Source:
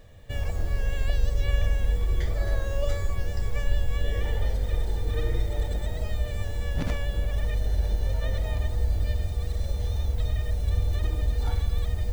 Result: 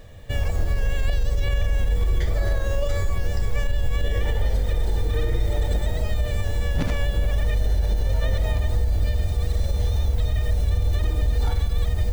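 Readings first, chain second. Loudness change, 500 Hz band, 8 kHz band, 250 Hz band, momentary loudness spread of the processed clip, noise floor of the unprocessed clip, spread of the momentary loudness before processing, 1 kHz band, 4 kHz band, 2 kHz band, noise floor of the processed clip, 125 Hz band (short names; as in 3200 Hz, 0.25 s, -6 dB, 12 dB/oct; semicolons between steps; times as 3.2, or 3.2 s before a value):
+4.0 dB, +4.5 dB, n/a, +5.0 dB, 3 LU, -31 dBFS, 4 LU, +5.0 dB, +4.5 dB, +4.5 dB, -26 dBFS, +4.5 dB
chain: limiter -20 dBFS, peak gain reduction 9 dB; gain +6.5 dB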